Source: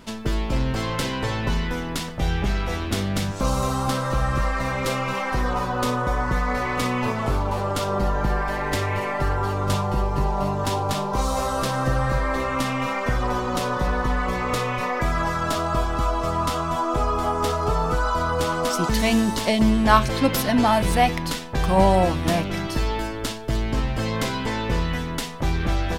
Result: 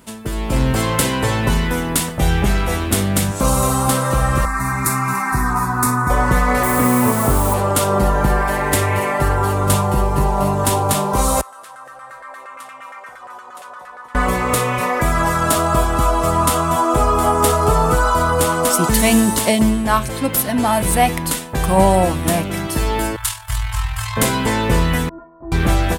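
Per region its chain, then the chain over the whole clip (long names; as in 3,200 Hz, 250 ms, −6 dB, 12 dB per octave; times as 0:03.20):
0:04.45–0:06.10: high-pass filter 58 Hz + phaser with its sweep stopped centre 1,300 Hz, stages 4
0:06.63–0:07.54: low-pass filter 2,000 Hz 24 dB per octave + parametric band 250 Hz +4 dB 0.26 octaves + bit-depth reduction 6 bits, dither none
0:11.41–0:14.15: first-order pre-emphasis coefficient 0.9 + auto-filter band-pass saw down 8.6 Hz 680–1,600 Hz
0:23.16–0:24.17: amplitude modulation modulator 41 Hz, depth 35% + Chebyshev band-stop filter 100–970 Hz, order 3
0:25.09–0:25.52: Butterworth low-pass 1,300 Hz + stiff-string resonator 330 Hz, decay 0.28 s, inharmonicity 0.008
whole clip: high-pass filter 41 Hz; high shelf with overshoot 7,000 Hz +9.5 dB, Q 1.5; automatic gain control gain up to 11.5 dB; level −1 dB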